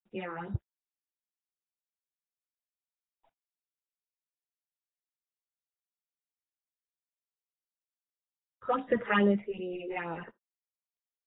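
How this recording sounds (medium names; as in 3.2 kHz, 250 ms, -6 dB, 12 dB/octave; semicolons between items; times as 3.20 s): phasing stages 6, 2.4 Hz, lowest notch 180–2200 Hz; a quantiser's noise floor 12-bit, dither none; random-step tremolo 3.7 Hz; AAC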